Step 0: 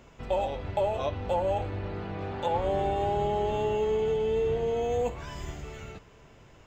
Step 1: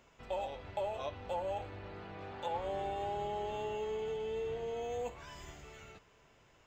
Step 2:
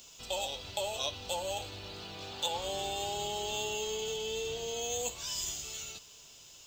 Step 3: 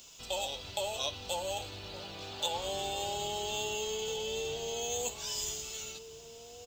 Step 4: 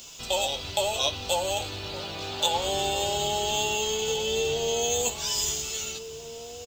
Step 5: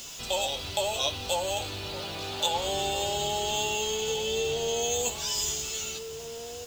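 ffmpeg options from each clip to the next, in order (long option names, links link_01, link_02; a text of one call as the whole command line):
ffmpeg -i in.wav -af "lowshelf=frequency=460:gain=-8.5,volume=-6.5dB" out.wav
ffmpeg -i in.wav -af "aexciter=amount=7.9:drive=8.1:freq=3000" out.wav
ffmpeg -i in.wav -filter_complex "[0:a]asplit=2[link_01][link_02];[link_02]adelay=1633,volume=-12dB,highshelf=frequency=4000:gain=-36.7[link_03];[link_01][link_03]amix=inputs=2:normalize=0" out.wav
ffmpeg -i in.wav -filter_complex "[0:a]asplit=2[link_01][link_02];[link_02]adelay=13,volume=-10.5dB[link_03];[link_01][link_03]amix=inputs=2:normalize=0,volume=8.5dB" out.wav
ffmpeg -i in.wav -af "aeval=exprs='val(0)+0.5*0.0126*sgn(val(0))':channel_layout=same,volume=-3dB" out.wav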